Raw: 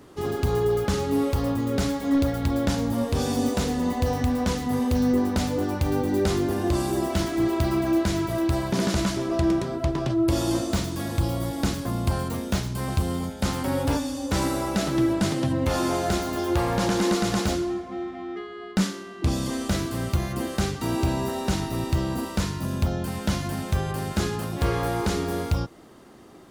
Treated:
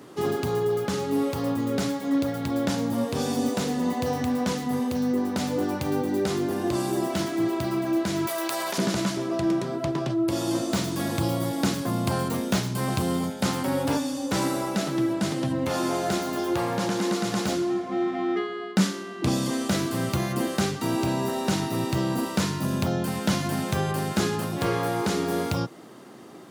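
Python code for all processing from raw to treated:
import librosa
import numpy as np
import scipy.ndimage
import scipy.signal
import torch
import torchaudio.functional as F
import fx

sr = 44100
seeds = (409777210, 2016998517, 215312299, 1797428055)

y = fx.chain(x, sr, fx.highpass(hz=670.0, slope=12),
    fx.high_shelf(hz=6200.0, db=7.5),
    fx.env_flatten(amount_pct=100), at=(8.27, 8.78))
y = scipy.signal.sosfilt(scipy.signal.butter(4, 120.0, 'highpass', fs=sr, output='sos'), y)
y = fx.rider(y, sr, range_db=10, speed_s=0.5)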